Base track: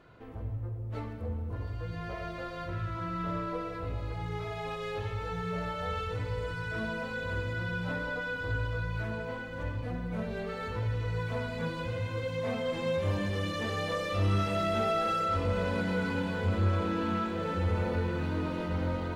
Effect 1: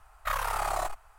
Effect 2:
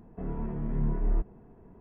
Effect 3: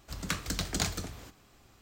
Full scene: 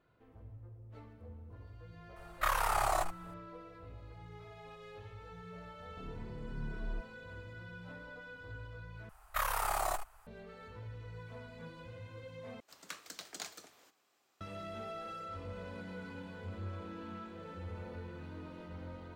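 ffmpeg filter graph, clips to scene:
ffmpeg -i bed.wav -i cue0.wav -i cue1.wav -i cue2.wav -filter_complex "[1:a]asplit=2[link_01][link_02];[0:a]volume=-15dB[link_03];[link_02]highshelf=frequency=11000:gain=10[link_04];[3:a]highpass=430[link_05];[link_03]asplit=3[link_06][link_07][link_08];[link_06]atrim=end=9.094[link_09];[link_04]atrim=end=1.18,asetpts=PTS-STARTPTS,volume=-4dB[link_10];[link_07]atrim=start=10.266:end=12.604[link_11];[link_05]atrim=end=1.81,asetpts=PTS-STARTPTS,volume=-12dB[link_12];[link_08]atrim=start=14.406[link_13];[link_01]atrim=end=1.18,asetpts=PTS-STARTPTS,volume=-1dB,afade=type=in:duration=0.004:curve=hsin,afade=type=out:start_time=1.176:duration=0.004:curve=hsin,adelay=2160[link_14];[2:a]atrim=end=1.8,asetpts=PTS-STARTPTS,volume=-13dB,afade=type=in:duration=0.004:curve=hsin,afade=type=out:start_time=1.796:duration=0.004:curve=hsin,adelay=5790[link_15];[link_09][link_10]acrossfade=duration=0.004:curve1=hsin:curve2=hsin[link_16];[link_16][link_11]acrossfade=duration=0.004:curve1=hsin:curve2=hsin[link_17];[link_17][link_12]acrossfade=duration=0.004:curve1=hsin:curve2=hsin[link_18];[link_18][link_13]acrossfade=duration=0.004:curve1=hsin:curve2=hsin[link_19];[link_19][link_14][link_15]amix=inputs=3:normalize=0" out.wav

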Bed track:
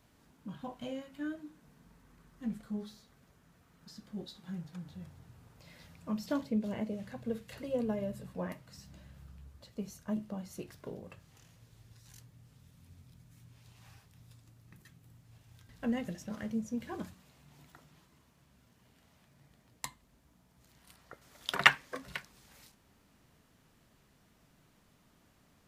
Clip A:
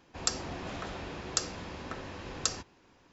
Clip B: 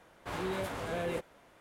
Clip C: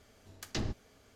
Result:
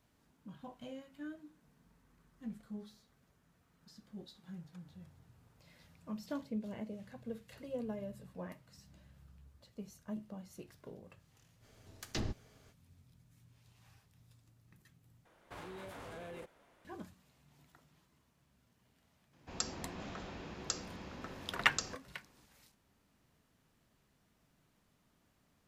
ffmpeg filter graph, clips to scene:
ffmpeg -i bed.wav -i cue0.wav -i cue1.wav -i cue2.wav -filter_complex "[0:a]volume=-7dB[link_01];[2:a]acompressor=threshold=-37dB:ratio=6:attack=3.2:release=140:knee=1:detection=peak[link_02];[1:a]equalizer=frequency=200:width_type=o:width=0.77:gain=5[link_03];[link_01]asplit=2[link_04][link_05];[link_04]atrim=end=15.254[link_06];[link_02]atrim=end=1.6,asetpts=PTS-STARTPTS,volume=-7dB[link_07];[link_05]atrim=start=16.846[link_08];[3:a]atrim=end=1.15,asetpts=PTS-STARTPTS,volume=-2.5dB,afade=type=in:duration=0.05,afade=type=out:start_time=1.1:duration=0.05,adelay=11600[link_09];[link_03]atrim=end=3.12,asetpts=PTS-STARTPTS,volume=-7.5dB,afade=type=in:duration=0.004:curve=hsin,afade=type=out:start_time=3.116:duration=0.004:curve=hsin,adelay=19330[link_10];[link_06][link_07]acrossfade=duration=0.004:curve1=hsin:curve2=hsin[link_11];[link_11][link_08]acrossfade=duration=0.004:curve1=hsin:curve2=hsin[link_12];[link_12][link_09][link_10]amix=inputs=3:normalize=0" out.wav

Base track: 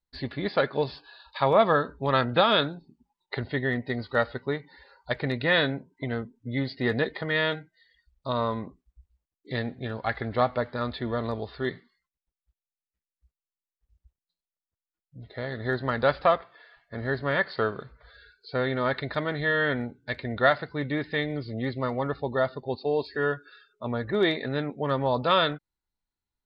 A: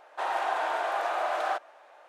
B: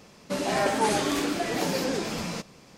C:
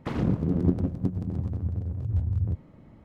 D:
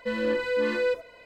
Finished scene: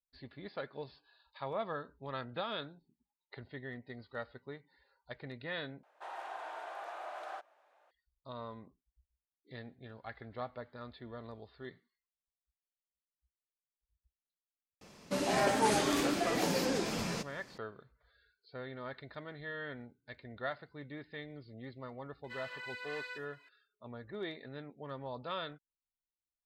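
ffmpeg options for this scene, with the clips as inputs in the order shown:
ffmpeg -i bed.wav -i cue0.wav -i cue1.wav -i cue2.wav -i cue3.wav -filter_complex "[0:a]volume=-17.5dB[link_01];[4:a]highpass=frequency=950:width=0.5412,highpass=frequency=950:width=1.3066[link_02];[link_01]asplit=2[link_03][link_04];[link_03]atrim=end=5.834[link_05];[1:a]atrim=end=2.08,asetpts=PTS-STARTPTS,volume=-15dB[link_06];[link_04]atrim=start=7.906[link_07];[2:a]atrim=end=2.77,asetpts=PTS-STARTPTS,volume=-4.5dB,afade=type=in:duration=0.004:curve=hsin,afade=type=out:start_time=2.766:duration=0.004:curve=hsin,adelay=14810[link_08];[link_02]atrim=end=1.25,asetpts=PTS-STARTPTS,volume=-10dB,afade=type=in:duration=0.004:curve=hsin,afade=type=out:start_time=1.246:duration=0.004:curve=hsin,adelay=22240[link_09];[link_05][link_06]acrossfade=duration=0.004:curve1=hsin:curve2=hsin[link_10];[link_10][link_07]acrossfade=duration=0.004:curve1=hsin:curve2=hsin[link_11];[link_11][link_08][link_09]amix=inputs=3:normalize=0" out.wav

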